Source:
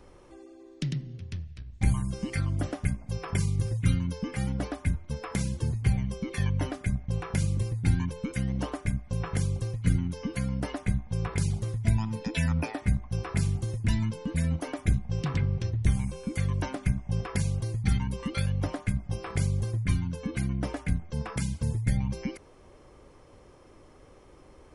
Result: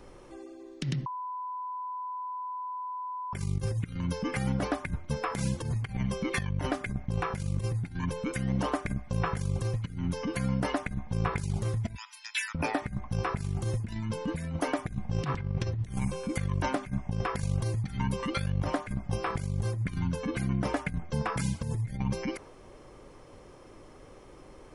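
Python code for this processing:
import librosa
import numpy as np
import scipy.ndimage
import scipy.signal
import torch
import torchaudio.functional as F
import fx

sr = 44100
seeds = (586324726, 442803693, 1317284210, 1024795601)

y = fx.peak_eq(x, sr, hz=2000.0, db=2.5, octaves=2.5, at=(5.65, 6.47))
y = fx.bessel_highpass(y, sr, hz=2000.0, order=8, at=(11.95, 12.55))
y = fx.edit(y, sr, fx.bleep(start_s=1.06, length_s=2.27, hz=1000.0, db=-21.0), tone=tone)
y = fx.peak_eq(y, sr, hz=68.0, db=-7.5, octaves=0.57)
y = fx.over_compress(y, sr, threshold_db=-31.0, ratio=-0.5)
y = fx.dynamic_eq(y, sr, hz=1100.0, q=0.7, threshold_db=-50.0, ratio=4.0, max_db=5)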